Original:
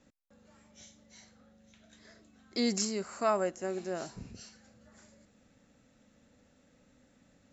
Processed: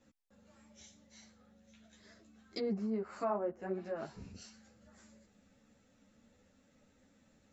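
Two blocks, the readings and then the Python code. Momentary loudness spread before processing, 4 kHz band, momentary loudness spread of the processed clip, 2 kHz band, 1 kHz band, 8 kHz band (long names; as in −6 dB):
19 LU, −12.5 dB, 22 LU, −9.0 dB, −6.0 dB, can't be measured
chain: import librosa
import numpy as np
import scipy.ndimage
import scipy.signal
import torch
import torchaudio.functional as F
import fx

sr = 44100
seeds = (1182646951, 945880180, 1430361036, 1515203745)

y = fx.env_lowpass_down(x, sr, base_hz=920.0, full_db=-29.0)
y = fx.ensemble(y, sr)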